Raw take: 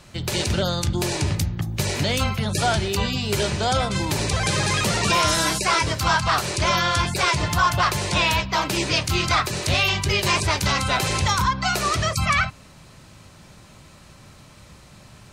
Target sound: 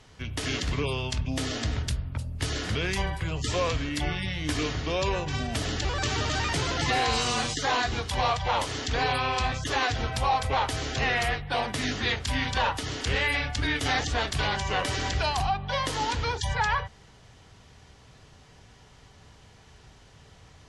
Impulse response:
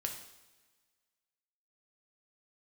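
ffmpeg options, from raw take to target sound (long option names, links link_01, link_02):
-af "asetrate=32667,aresample=44100,volume=-6dB"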